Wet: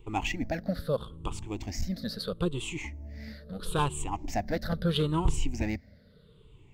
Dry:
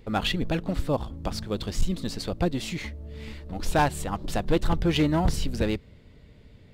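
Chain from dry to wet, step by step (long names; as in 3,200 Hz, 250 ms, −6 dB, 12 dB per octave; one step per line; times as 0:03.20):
rippled gain that drifts along the octave scale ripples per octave 0.67, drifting −0.76 Hz, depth 18 dB
level −7.5 dB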